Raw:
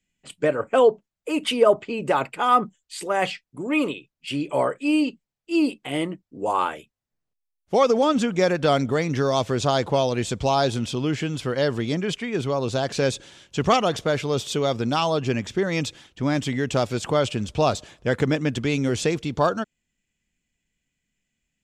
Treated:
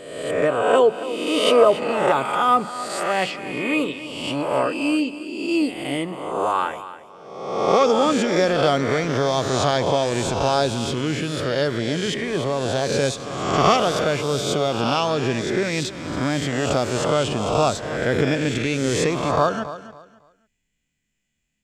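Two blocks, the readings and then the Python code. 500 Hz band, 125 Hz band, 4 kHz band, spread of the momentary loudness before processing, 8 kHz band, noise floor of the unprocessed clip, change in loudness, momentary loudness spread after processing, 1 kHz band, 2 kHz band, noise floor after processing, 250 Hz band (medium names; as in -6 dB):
+2.5 dB, +1.0 dB, +4.0 dB, 9 LU, +4.5 dB, -80 dBFS, +2.0 dB, 9 LU, +3.0 dB, +3.5 dB, -74 dBFS, +1.0 dB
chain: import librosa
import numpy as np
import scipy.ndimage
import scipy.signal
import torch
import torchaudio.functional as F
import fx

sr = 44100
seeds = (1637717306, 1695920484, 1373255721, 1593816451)

y = fx.spec_swells(x, sr, rise_s=1.12)
y = fx.echo_feedback(y, sr, ms=277, feedback_pct=25, wet_db=-14.0)
y = y * 10.0 ** (-1.0 / 20.0)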